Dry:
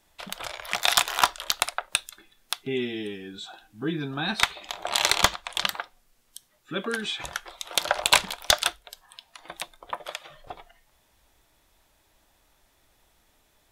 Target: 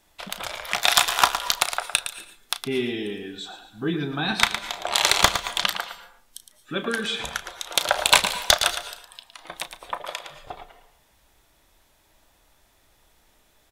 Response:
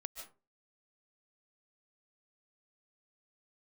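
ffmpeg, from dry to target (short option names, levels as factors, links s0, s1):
-filter_complex "[0:a]aecho=1:1:112:0.316,asplit=2[s0][s1];[1:a]atrim=start_sample=2205,asetrate=33075,aresample=44100,adelay=34[s2];[s1][s2]afir=irnorm=-1:irlink=0,volume=0.335[s3];[s0][s3]amix=inputs=2:normalize=0,volume=1.33"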